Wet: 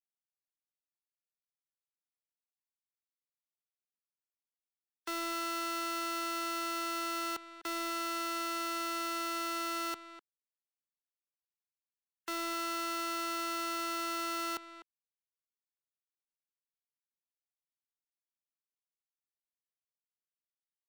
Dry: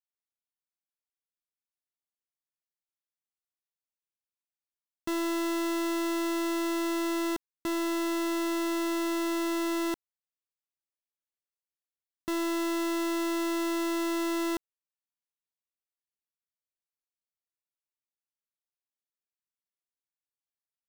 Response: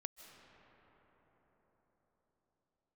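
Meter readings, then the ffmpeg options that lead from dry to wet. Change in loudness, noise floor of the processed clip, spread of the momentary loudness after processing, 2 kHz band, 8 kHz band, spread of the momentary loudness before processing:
-5.0 dB, under -85 dBFS, 5 LU, -2.5 dB, -2.5 dB, 4 LU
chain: -filter_complex "[0:a]afftfilt=real='re*gte(hypot(re,im),0.00355)':imag='im*gte(hypot(re,im),0.00355)':win_size=1024:overlap=0.75,acrossover=split=360[a][b];[a]aeval=exprs='(mod(63.1*val(0)+1,2)-1)/63.1':c=same[c];[c][b]amix=inputs=2:normalize=0,asplit=2[d][e];[e]adelay=250,highpass=300,lowpass=3.4k,asoftclip=type=hard:threshold=-32dB,volume=-12dB[f];[d][f]amix=inputs=2:normalize=0,volume=-2.5dB"

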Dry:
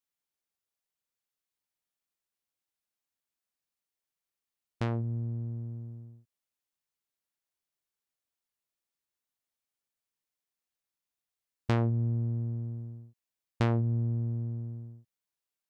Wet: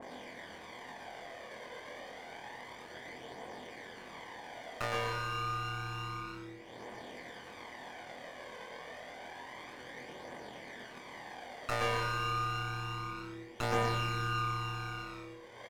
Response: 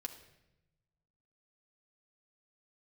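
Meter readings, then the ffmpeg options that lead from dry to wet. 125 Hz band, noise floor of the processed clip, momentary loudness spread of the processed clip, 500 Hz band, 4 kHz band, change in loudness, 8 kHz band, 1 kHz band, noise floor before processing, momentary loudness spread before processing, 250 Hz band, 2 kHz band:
-9.5 dB, -50 dBFS, 14 LU, +2.5 dB, +12.5 dB, -7.0 dB, n/a, +10.5 dB, under -85 dBFS, 16 LU, -8.5 dB, +12.0 dB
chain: -filter_complex "[0:a]acrusher=samples=33:mix=1:aa=0.000001,asplit=5[a][b][c][d][e];[b]adelay=103,afreqshift=-150,volume=-12.5dB[f];[c]adelay=206,afreqshift=-300,volume=-20.7dB[g];[d]adelay=309,afreqshift=-450,volume=-28.9dB[h];[e]adelay=412,afreqshift=-600,volume=-37dB[i];[a][f][g][h][i]amix=inputs=5:normalize=0,acompressor=mode=upward:threshold=-30dB:ratio=2.5,bandpass=f=1.7k:t=q:w=0.73:csg=0,asplit=2[j][k];[k]adelay=24,volume=-2.5dB[l];[j][l]amix=inputs=2:normalize=0,asplit=2[m][n];[1:a]atrim=start_sample=2205,adelay=114[o];[n][o]afir=irnorm=-1:irlink=0,volume=0.5dB[p];[m][p]amix=inputs=2:normalize=0,acompressor=threshold=-53dB:ratio=1.5,aeval=exprs='0.0708*(cos(1*acos(clip(val(0)/0.0708,-1,1)))-cos(1*PI/2))+0.0355*(cos(2*acos(clip(val(0)/0.0708,-1,1)))-cos(2*PI/2))':c=same,flanger=delay=0.1:depth=1.9:regen=41:speed=0.29:shape=triangular,adynamicequalizer=threshold=0.00112:dfrequency=1600:dqfactor=0.7:tfrequency=1600:tqfactor=0.7:attack=5:release=100:ratio=0.375:range=2:mode=cutabove:tftype=highshelf,volume=17dB"

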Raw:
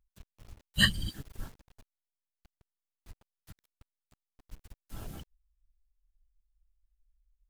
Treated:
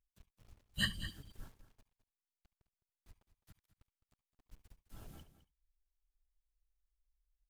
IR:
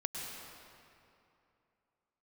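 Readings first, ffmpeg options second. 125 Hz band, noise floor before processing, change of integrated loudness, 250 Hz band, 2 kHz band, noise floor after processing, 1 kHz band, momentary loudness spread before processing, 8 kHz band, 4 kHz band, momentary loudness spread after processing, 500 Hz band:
-10.5 dB, under -85 dBFS, -9.5 dB, -10.0 dB, -10.5 dB, under -85 dBFS, -10.0 dB, 21 LU, -10.0 dB, -10.0 dB, 21 LU, -10.5 dB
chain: -filter_complex "[0:a]aecho=1:1:210:0.211[a];[1:a]atrim=start_sample=2205,atrim=end_sample=4410,asetrate=61740,aresample=44100[b];[a][b]afir=irnorm=-1:irlink=0,volume=-6dB"

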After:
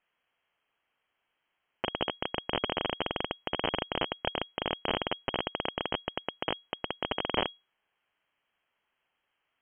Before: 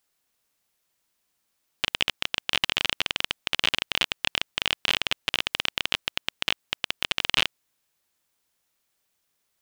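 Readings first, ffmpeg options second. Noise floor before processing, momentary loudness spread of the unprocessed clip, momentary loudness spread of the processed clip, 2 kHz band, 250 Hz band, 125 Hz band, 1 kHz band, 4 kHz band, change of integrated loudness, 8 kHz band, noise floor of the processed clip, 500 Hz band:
-76 dBFS, 5 LU, 5 LU, -9.5 dB, +4.5 dB, +1.0 dB, +2.0 dB, -10.0 dB, -7.5 dB, under -40 dB, -82 dBFS, +7.0 dB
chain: -filter_complex "[0:a]acrossover=split=420[a][b];[b]asoftclip=type=tanh:threshold=-14.5dB[c];[a][c]amix=inputs=2:normalize=0,lowpass=f=2.8k:t=q:w=0.5098,lowpass=f=2.8k:t=q:w=0.6013,lowpass=f=2.8k:t=q:w=0.9,lowpass=f=2.8k:t=q:w=2.563,afreqshift=-3300,volume=3dB"

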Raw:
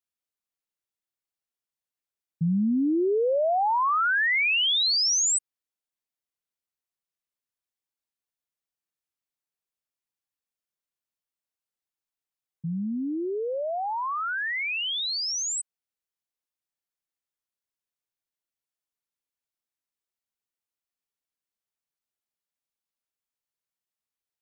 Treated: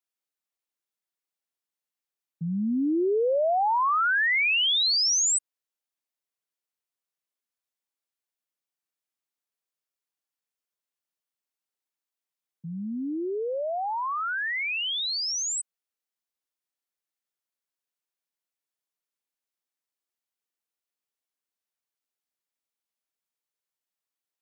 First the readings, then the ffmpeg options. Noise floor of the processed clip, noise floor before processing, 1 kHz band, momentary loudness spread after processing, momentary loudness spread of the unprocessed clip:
under -85 dBFS, under -85 dBFS, 0.0 dB, 12 LU, 10 LU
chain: -af "highpass=220"

